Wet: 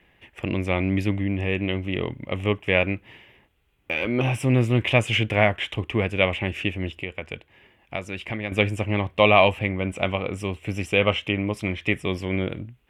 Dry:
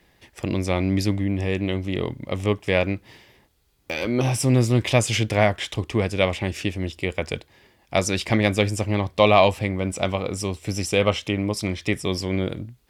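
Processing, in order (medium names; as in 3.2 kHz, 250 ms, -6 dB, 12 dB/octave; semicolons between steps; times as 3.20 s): 6.93–8.52 s: compression 2:1, threshold -34 dBFS, peak gain reduction 11 dB; resonant high shelf 3.6 kHz -9 dB, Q 3; trim -1.5 dB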